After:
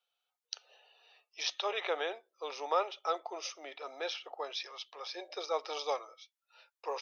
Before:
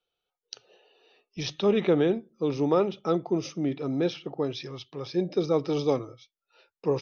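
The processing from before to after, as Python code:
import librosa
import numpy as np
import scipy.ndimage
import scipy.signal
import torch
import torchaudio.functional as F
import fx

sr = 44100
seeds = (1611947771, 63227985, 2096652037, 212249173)

y = scipy.signal.sosfilt(scipy.signal.cheby2(4, 60, 190.0, 'highpass', fs=sr, output='sos'), x)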